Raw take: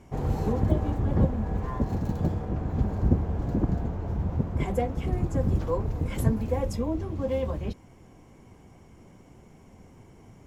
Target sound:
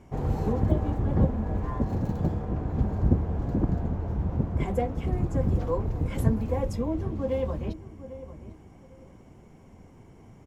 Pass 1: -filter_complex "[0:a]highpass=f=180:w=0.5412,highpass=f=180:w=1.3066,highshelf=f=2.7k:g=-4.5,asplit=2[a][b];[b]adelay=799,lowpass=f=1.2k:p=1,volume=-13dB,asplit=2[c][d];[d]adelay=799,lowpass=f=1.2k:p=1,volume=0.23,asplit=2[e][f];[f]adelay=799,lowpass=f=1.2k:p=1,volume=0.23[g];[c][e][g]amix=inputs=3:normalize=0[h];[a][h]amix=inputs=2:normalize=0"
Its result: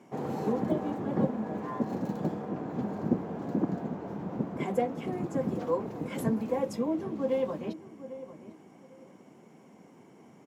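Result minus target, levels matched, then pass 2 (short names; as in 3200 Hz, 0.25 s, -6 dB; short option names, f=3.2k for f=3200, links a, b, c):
250 Hz band +3.0 dB
-filter_complex "[0:a]highshelf=f=2.7k:g=-4.5,asplit=2[a][b];[b]adelay=799,lowpass=f=1.2k:p=1,volume=-13dB,asplit=2[c][d];[d]adelay=799,lowpass=f=1.2k:p=1,volume=0.23,asplit=2[e][f];[f]adelay=799,lowpass=f=1.2k:p=1,volume=0.23[g];[c][e][g]amix=inputs=3:normalize=0[h];[a][h]amix=inputs=2:normalize=0"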